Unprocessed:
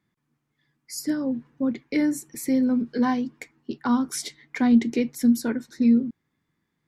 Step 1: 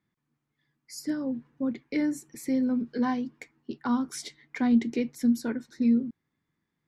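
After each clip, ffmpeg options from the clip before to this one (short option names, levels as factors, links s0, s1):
-af "highshelf=f=11000:g=-11,volume=0.596"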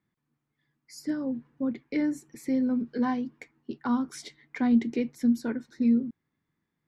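-af "highshelf=f=4700:g=-7.5"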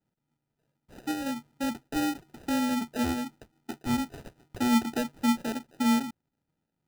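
-af "acrusher=samples=40:mix=1:aa=0.000001,volume=0.841"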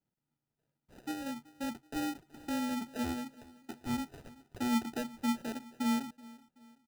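-af "aecho=1:1:378|756|1134:0.0841|0.037|0.0163,volume=0.447"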